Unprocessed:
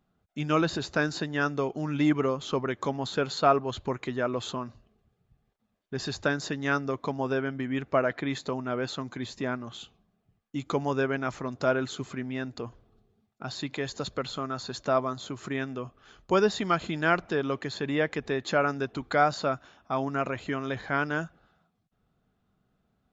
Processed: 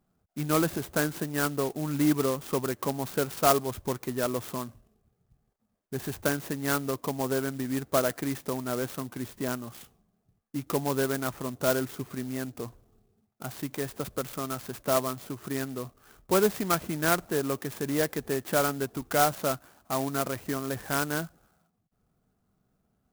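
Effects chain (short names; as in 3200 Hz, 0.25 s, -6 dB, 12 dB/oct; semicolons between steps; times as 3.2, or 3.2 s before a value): high shelf 3900 Hz -8.5 dB; clock jitter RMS 0.079 ms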